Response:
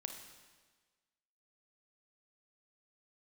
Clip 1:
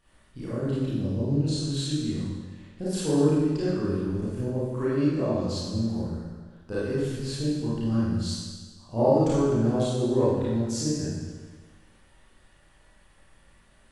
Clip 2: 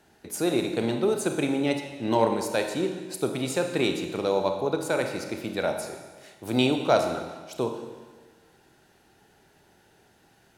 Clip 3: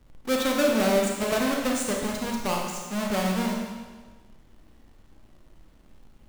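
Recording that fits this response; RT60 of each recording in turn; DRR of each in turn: 2; 1.4, 1.4, 1.4 s; -10.0, 4.5, -1.0 dB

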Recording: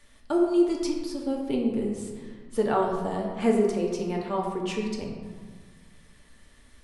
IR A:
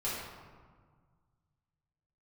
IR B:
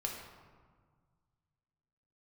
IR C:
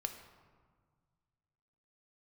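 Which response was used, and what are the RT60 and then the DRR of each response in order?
B; 1.6, 1.7, 1.7 s; -10.5, -1.0, 5.5 dB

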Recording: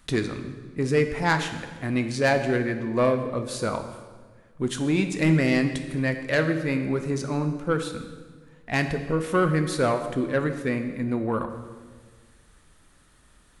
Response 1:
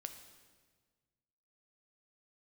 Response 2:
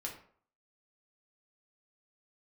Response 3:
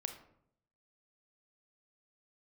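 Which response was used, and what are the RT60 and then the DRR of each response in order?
1; 1.5, 0.55, 0.70 s; 6.5, -2.0, 6.5 dB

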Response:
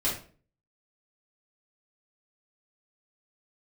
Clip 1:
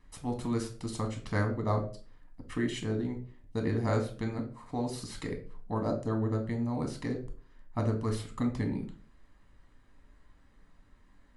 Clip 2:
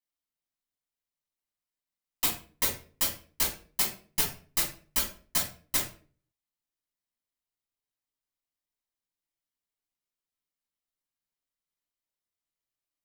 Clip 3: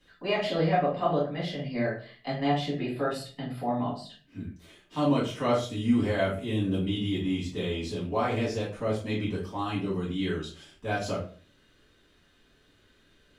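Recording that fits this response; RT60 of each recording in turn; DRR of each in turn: 3; 0.45, 0.45, 0.45 s; 3.0, -3.0, -8.0 dB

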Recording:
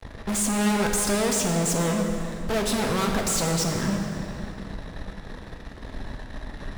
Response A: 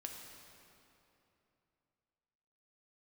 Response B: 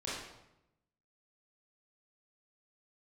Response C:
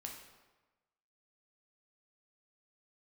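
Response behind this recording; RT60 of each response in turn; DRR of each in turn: A; 3.0, 0.90, 1.2 s; 1.0, -9.0, 0.0 dB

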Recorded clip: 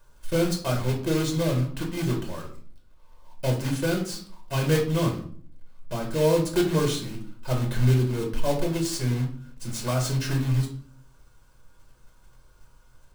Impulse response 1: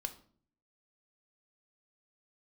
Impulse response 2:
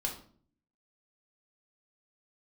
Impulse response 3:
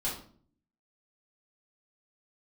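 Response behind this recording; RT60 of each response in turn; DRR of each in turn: 2; 0.50, 0.50, 0.50 s; 7.5, 0.0, -8.0 dB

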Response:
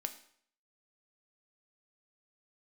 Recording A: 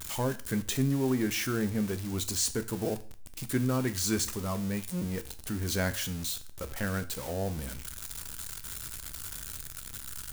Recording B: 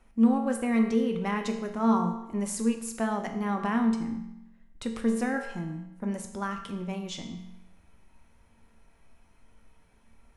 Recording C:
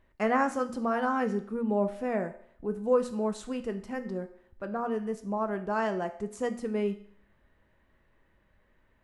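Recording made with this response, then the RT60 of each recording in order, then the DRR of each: C; 0.40, 0.90, 0.60 s; 10.5, 3.5, 7.0 dB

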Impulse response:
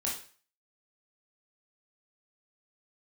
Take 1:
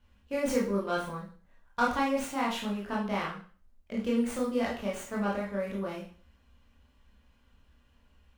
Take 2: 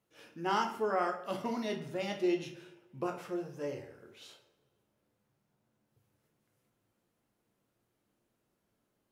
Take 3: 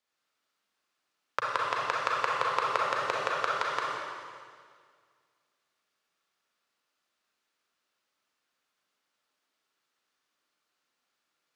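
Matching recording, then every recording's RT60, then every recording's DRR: 1; 0.45, 0.60, 1.9 s; -4.5, 2.5, -4.0 dB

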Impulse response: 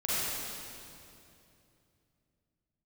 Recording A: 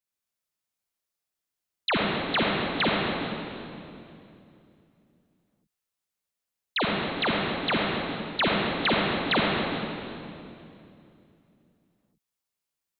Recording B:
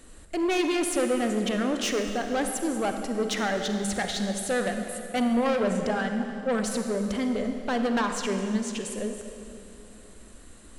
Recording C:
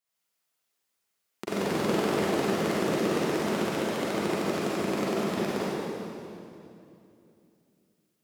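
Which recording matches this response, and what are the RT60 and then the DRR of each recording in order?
C; 2.8, 2.8, 2.8 s; -3.5, 5.0, -10.5 dB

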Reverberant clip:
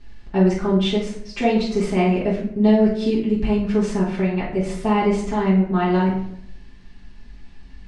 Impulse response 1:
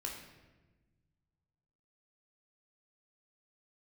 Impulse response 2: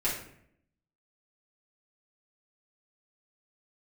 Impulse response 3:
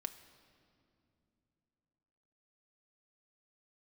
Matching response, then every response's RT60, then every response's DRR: 2; 1.2 s, 0.70 s, not exponential; -1.0, -9.0, 8.0 dB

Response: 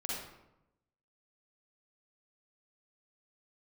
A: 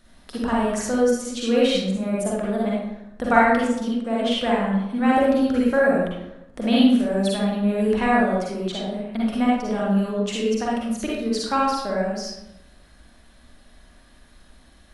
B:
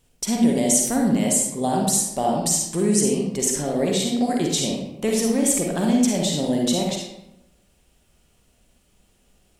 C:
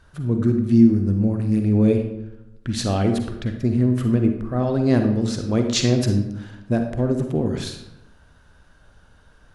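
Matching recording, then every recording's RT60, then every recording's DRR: A; 0.90, 0.90, 0.90 s; -5.5, -0.5, 5.0 dB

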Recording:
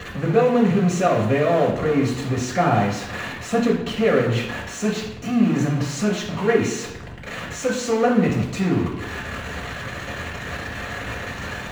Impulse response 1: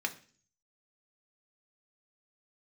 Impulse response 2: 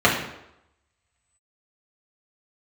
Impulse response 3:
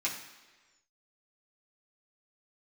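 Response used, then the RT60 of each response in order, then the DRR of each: 2; 0.45, 0.85, 1.3 s; 3.5, -5.5, -6.0 dB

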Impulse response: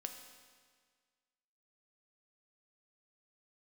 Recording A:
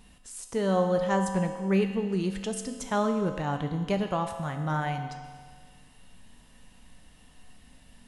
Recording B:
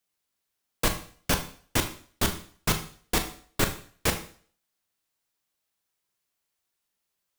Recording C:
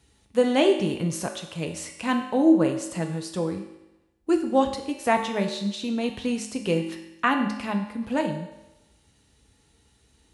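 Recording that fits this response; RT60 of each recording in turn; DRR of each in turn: A; 1.7, 0.50, 0.95 s; 4.5, 6.0, 3.5 dB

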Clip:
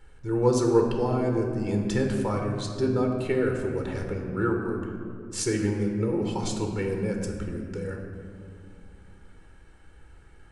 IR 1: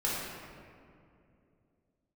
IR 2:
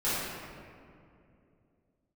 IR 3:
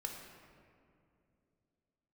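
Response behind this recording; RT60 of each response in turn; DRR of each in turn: 3; 2.5, 2.5, 2.6 s; -6.5, -13.0, 2.0 dB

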